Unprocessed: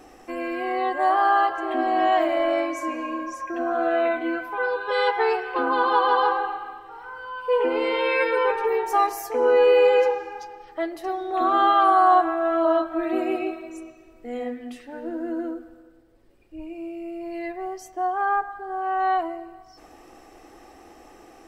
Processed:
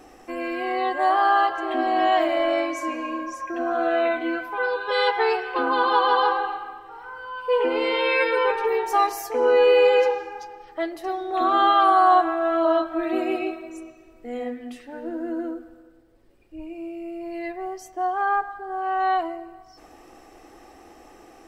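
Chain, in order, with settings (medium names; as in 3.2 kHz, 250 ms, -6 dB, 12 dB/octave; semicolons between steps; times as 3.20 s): dynamic bell 3.9 kHz, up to +5 dB, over -43 dBFS, Q 1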